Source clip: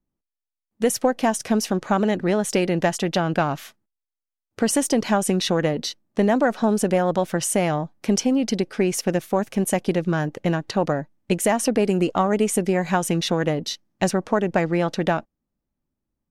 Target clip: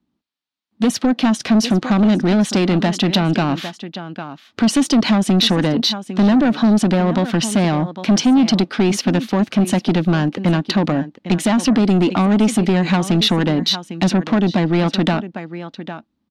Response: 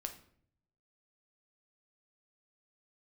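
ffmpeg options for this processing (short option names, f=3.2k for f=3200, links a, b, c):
-filter_complex "[0:a]highpass=82,bass=f=250:g=14,treble=f=4k:g=-7,asplit=2[a][b];[b]aecho=0:1:803:0.126[c];[a][c]amix=inputs=2:normalize=0,acrossover=split=490[d][e];[e]acompressor=threshold=-24dB:ratio=3[f];[d][f]amix=inputs=2:normalize=0,asplit=2[g][h];[h]highpass=f=720:p=1,volume=19dB,asoftclip=type=tanh:threshold=-1.5dB[i];[g][i]amix=inputs=2:normalize=0,lowpass=f=2.6k:p=1,volume=-6dB,equalizer=f=125:t=o:w=1:g=-8,equalizer=f=250:t=o:w=1:g=7,equalizer=f=500:t=o:w=1:g=-6,equalizer=f=2k:t=o:w=1:g=-3,equalizer=f=4k:t=o:w=1:g=10,acrossover=split=5600[j][k];[j]asoftclip=type=tanh:threshold=-9dB[l];[l][k]amix=inputs=2:normalize=0"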